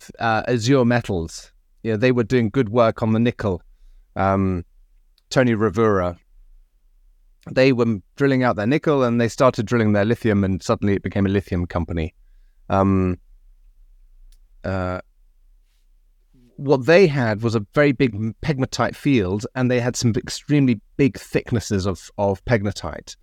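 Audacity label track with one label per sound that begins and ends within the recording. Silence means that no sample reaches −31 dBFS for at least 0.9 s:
7.470000	13.150000	sound
14.640000	15.000000	sound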